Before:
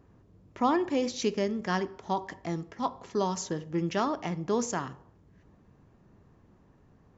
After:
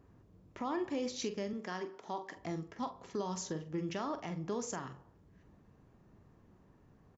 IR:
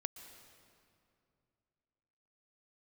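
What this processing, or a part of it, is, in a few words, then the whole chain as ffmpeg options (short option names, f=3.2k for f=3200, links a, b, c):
stacked limiters: -filter_complex "[0:a]alimiter=limit=-20dB:level=0:latency=1:release=103,alimiter=level_in=0.5dB:limit=-24dB:level=0:latency=1:release=380,volume=-0.5dB,asettb=1/sr,asplit=3[a][b][c];[a]atrim=end=1.534[d];[b]atrim=start=1.53:end=2.37,asetpts=PTS-STARTPTS,afade=t=in:d=0.004:c=qsin,afade=t=out:st=0.836:d=0.004:c=qsin,highpass=240[e];[c]atrim=start=2.366[f];[d][e]acrossfade=d=0.004:c1=hsin:c2=qsin[g];[g][f]acrossfade=d=0.004:c1=qsin:c2=hsin,asplit=2[h][i];[i]adelay=44,volume=-10dB[j];[h][j]amix=inputs=2:normalize=0,volume=-3.5dB"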